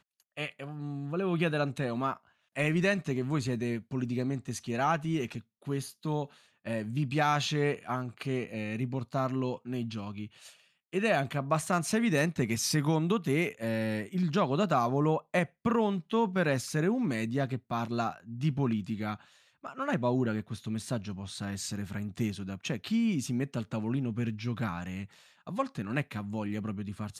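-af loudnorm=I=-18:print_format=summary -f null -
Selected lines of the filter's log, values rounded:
Input Integrated:    -31.9 LUFS
Input True Peak:     -15.0 dBTP
Input LRA:             6.4 LU
Input Threshold:     -42.2 LUFS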